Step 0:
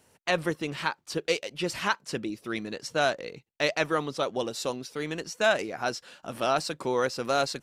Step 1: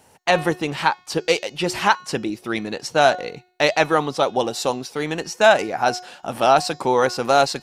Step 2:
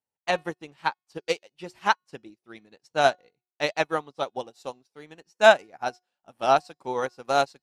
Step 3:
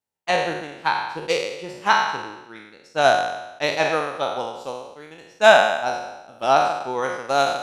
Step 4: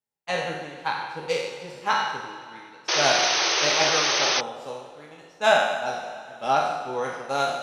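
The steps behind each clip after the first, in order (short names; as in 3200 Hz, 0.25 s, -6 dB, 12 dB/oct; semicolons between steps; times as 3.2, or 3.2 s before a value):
bell 810 Hz +9 dB 0.4 oct; de-hum 363.5 Hz, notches 21; gain +7.5 dB
upward expander 2.5:1, over -37 dBFS
spectral trails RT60 0.98 s; gain +1.5 dB
two-slope reverb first 0.23 s, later 2.7 s, from -17 dB, DRR 1.5 dB; painted sound noise, 2.88–4.41, 310–6400 Hz -16 dBFS; gain -7 dB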